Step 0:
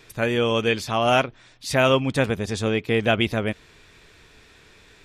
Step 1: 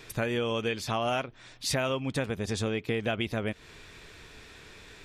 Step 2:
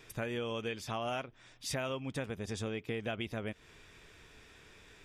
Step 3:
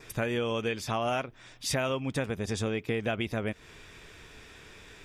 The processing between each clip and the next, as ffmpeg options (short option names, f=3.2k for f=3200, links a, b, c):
-af "acompressor=threshold=-29dB:ratio=6,volume=2dB"
-af "bandreject=f=4.2k:w=8.1,volume=-7.5dB"
-af "adynamicequalizer=threshold=0.00112:dfrequency=3100:dqfactor=5:tfrequency=3100:tqfactor=5:attack=5:release=100:ratio=0.375:range=2:mode=cutabove:tftype=bell,volume=7dB"